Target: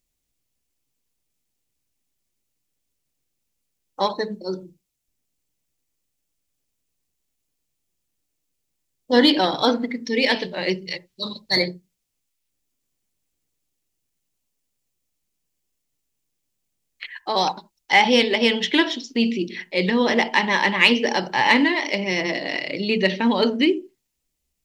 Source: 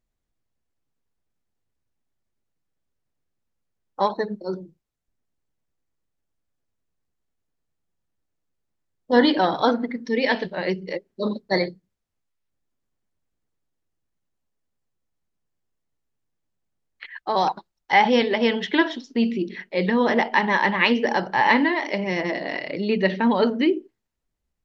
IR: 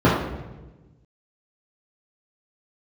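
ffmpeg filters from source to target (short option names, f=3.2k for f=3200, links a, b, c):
-filter_complex "[0:a]asettb=1/sr,asplit=3[a][b][c];[a]atrim=end=10.874[d];[b]atrim=start=10.87:end=11.57,asetpts=PTS-STARTPTS,afade=t=in:d=0.004:c=qsin,afade=t=out:st=0.696:d=0.004:c=qsin,equalizer=f=125:t=o:w=1:g=8,equalizer=f=250:t=o:w=1:g=-11,equalizer=f=500:t=o:w=1:g=-10,equalizer=f=4k:t=o:w=1:g=5[e];[c]atrim=start=11.566[f];[d][e]acrossfade=d=0.004:c1=hsin:c2=qsin[g];[g][f]acrossfade=d=0.004:c1=qsin:c2=hsin,aexciter=amount=2.6:drive=6.7:freq=2.2k,asplit=2[h][i];[1:a]atrim=start_sample=2205,atrim=end_sample=3969,lowpass=2.2k[j];[i][j]afir=irnorm=-1:irlink=0,volume=-37dB[k];[h][k]amix=inputs=2:normalize=0,volume=-1dB"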